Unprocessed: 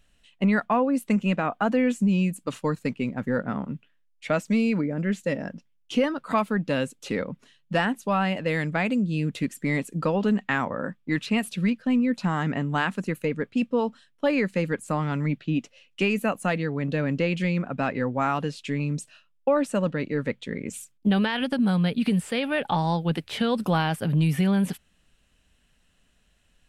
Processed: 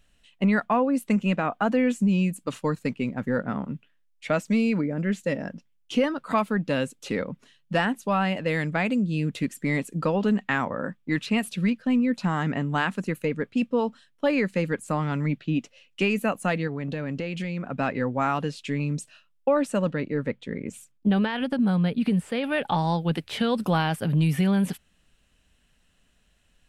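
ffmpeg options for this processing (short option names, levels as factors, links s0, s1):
-filter_complex "[0:a]asettb=1/sr,asplit=3[s0][s1][s2];[s0]atrim=end=16.674[s3];[s1]atrim=start=16.67:end=17.72,asetpts=PTS-STARTPTS,afade=t=in:d=0.004:c=qsin,afade=t=out:st=1.046:d=0.004:c=qsin,acompressor=threshold=0.0501:ratio=6:attack=3.2:release=140:knee=1:detection=peak[s4];[s2]atrim=start=17.716[s5];[s3][s4]acrossfade=d=0.004:c1=hsin:c2=qsin[s6];[s6][s5]acrossfade=d=0.004:c1=qsin:c2=hsin,asettb=1/sr,asplit=3[s7][s8][s9];[s7]atrim=end=20.004[s10];[s8]atrim=start=20:end=22.44,asetpts=PTS-STARTPTS,afade=t=in:d=0.004:c=qsin,afade=t=out:st=2.436:d=0.004:c=qsin,highshelf=f=2300:g=-7.5[s11];[s9]atrim=start=22.436[s12];[s10][s11]acrossfade=d=0.004:c1=hsin:c2=qsin[s13];[s13][s12]acrossfade=d=0.004:c1=qsin:c2=hsin"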